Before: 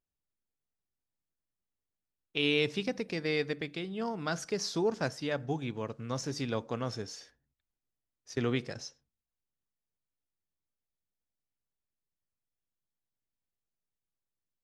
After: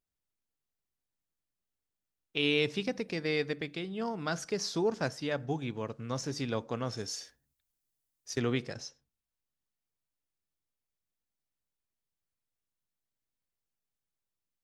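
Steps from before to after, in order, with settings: 6.97–8.4 high shelf 5000 Hz +12 dB

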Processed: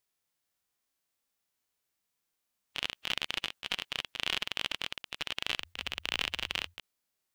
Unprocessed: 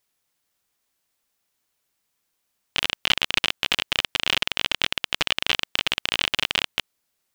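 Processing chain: 5.55–6.74 frequency shift -87 Hz; harmonic-percussive split percussive -17 dB; gain -3 dB

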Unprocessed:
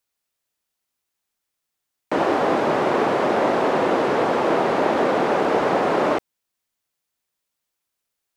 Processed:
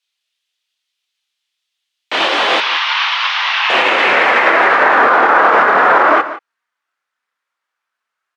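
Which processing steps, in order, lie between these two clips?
chorus voices 6, 0.32 Hz, delay 27 ms, depth 3.1 ms; 2.6–3.7 elliptic band-pass 960–5800 Hz, stop band 40 dB; on a send: echo 0.175 s -15 dB; on the sum: band-pass sweep 3300 Hz -> 1400 Hz, 3.41–5.14; maximiser +28.5 dB; upward expander 1.5:1, over -27 dBFS

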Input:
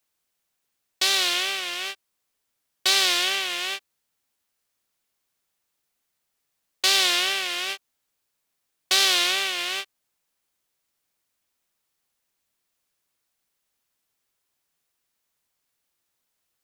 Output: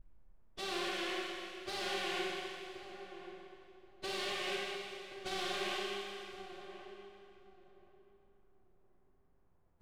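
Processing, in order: vibrato 0.44 Hz 62 cents; tilt -4.5 dB/oct; de-hum 61.4 Hz, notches 15; compressor 10:1, threshold -38 dBFS, peak gain reduction 17.5 dB; hard clip -33 dBFS, distortion -15 dB; low-pass opened by the level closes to 1300 Hz, open at -41.5 dBFS; plain phase-vocoder stretch 0.59×; on a send: darkening echo 1.077 s, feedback 25%, low-pass 890 Hz, level -9.5 dB; on the sum: Schroeder reverb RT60 2.5 s, combs from 31 ms, DRR -4 dB; gain +4 dB

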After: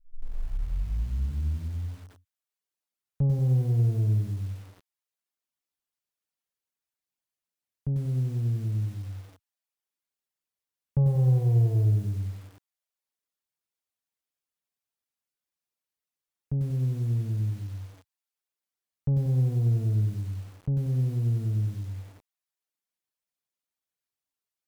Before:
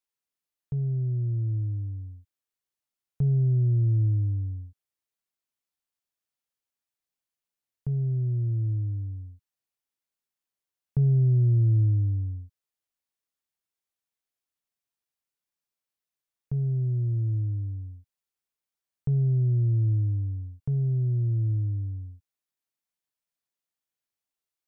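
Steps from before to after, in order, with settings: tape start at the beginning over 2.07 s; added harmonics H 4 -19 dB, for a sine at -17.5 dBFS; reverb removal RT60 0.61 s; lo-fi delay 93 ms, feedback 55%, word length 8-bit, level -7 dB

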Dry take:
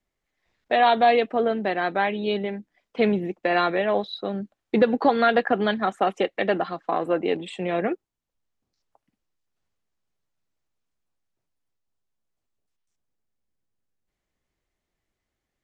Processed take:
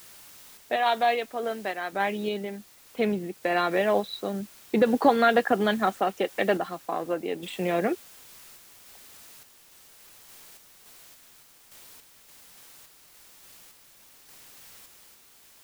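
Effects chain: 0.76–1.93 low shelf 400 Hz -11.5 dB; added noise white -49 dBFS; random-step tremolo

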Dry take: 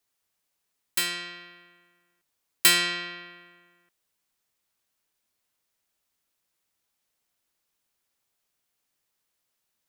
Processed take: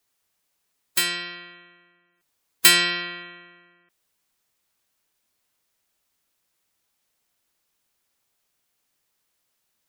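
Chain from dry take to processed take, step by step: spectral gate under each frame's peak -20 dB strong; gain +4.5 dB

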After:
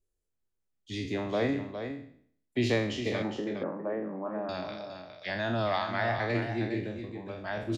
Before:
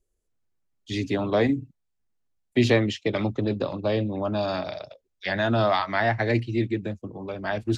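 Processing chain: spectral trails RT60 0.59 s; 3.22–4.49 Chebyshev band-pass 160–1900 Hz, order 4; echo 0.41 s -8.5 dB; gain -8.5 dB

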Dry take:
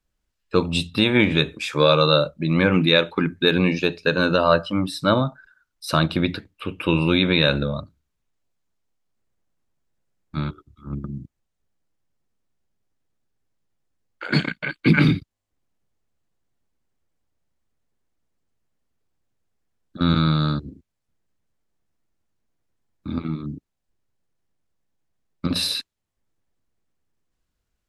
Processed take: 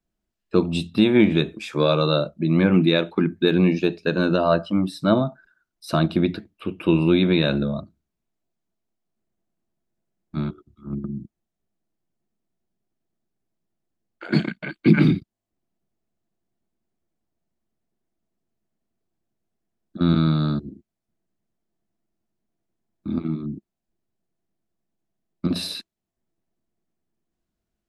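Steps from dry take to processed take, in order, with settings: small resonant body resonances 210/340/660 Hz, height 11 dB, ringing for 35 ms; gain -6.5 dB

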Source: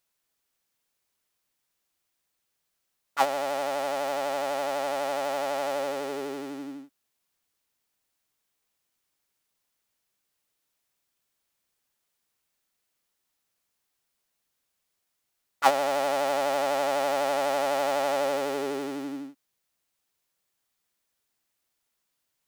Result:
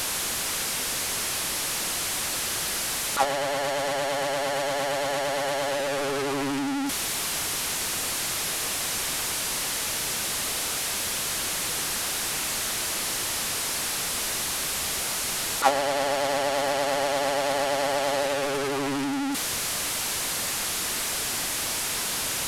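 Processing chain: delta modulation 64 kbps, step -21 dBFS

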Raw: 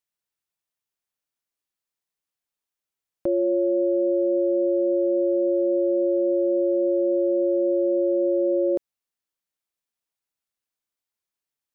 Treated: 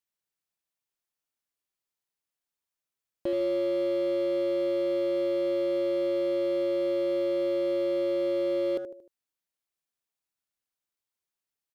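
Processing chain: feedback echo 76 ms, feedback 43%, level -11 dB; in parallel at -6 dB: wavefolder -31 dBFS; on the sum: gain -6 dB

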